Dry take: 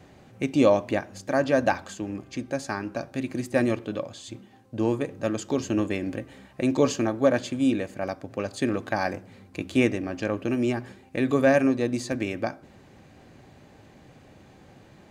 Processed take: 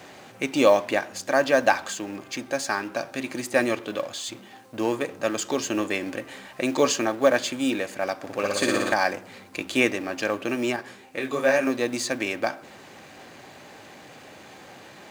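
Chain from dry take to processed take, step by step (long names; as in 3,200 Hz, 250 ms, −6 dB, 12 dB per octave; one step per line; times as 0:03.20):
mu-law and A-law mismatch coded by mu
high-pass filter 800 Hz 6 dB per octave
0:08.16–0:08.94: flutter between parallel walls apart 10.1 metres, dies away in 1.4 s
0:10.76–0:11.67: micro pitch shift up and down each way 36 cents
level +6.5 dB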